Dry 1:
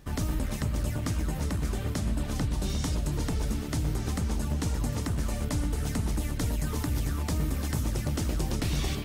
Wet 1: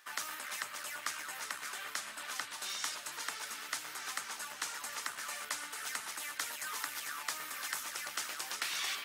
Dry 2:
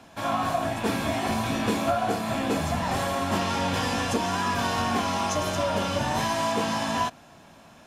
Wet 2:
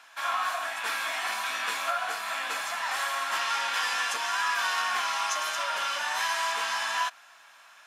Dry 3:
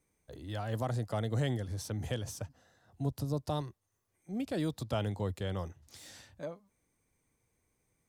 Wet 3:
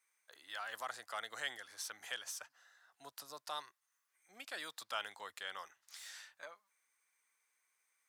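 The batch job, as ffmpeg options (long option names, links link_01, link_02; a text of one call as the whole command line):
ffmpeg -i in.wav -af "aeval=exprs='0.237*(cos(1*acos(clip(val(0)/0.237,-1,1)))-cos(1*PI/2))+0.00596*(cos(4*acos(clip(val(0)/0.237,-1,1)))-cos(4*PI/2))':channel_layout=same,highpass=frequency=1400:width_type=q:width=1.6" out.wav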